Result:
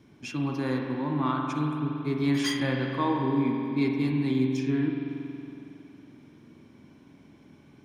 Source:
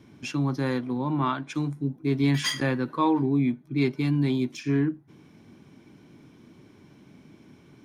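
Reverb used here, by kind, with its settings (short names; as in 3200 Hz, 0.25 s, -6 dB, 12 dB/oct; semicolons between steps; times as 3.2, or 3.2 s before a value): spring tank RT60 2.9 s, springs 46 ms, chirp 50 ms, DRR 1 dB; gain -4 dB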